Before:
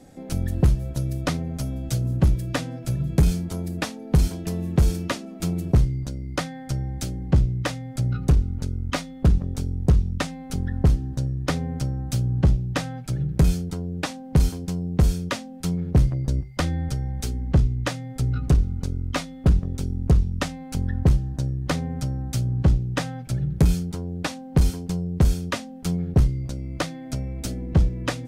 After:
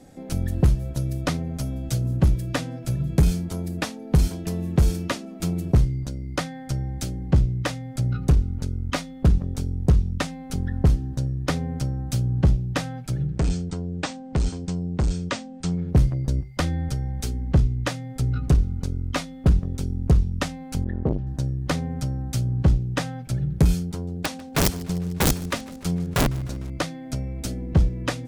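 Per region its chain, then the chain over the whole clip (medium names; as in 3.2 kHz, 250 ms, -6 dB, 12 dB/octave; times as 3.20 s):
13.29–15.88 s: overload inside the chain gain 18 dB + brick-wall FIR low-pass 8.9 kHz
20.84–21.27 s: low-pass 3 kHz + transformer saturation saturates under 290 Hz
23.79–26.70 s: integer overflow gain 14.5 dB + modulated delay 151 ms, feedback 71%, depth 139 cents, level -21 dB
whole clip: none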